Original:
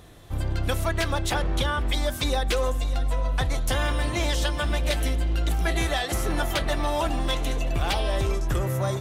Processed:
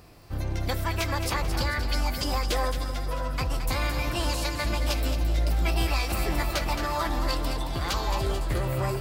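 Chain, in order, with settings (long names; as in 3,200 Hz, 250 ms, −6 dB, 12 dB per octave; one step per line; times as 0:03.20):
echo with a time of its own for lows and highs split 650 Hz, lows 562 ms, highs 220 ms, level −8 dB
formants moved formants +5 semitones
level −3 dB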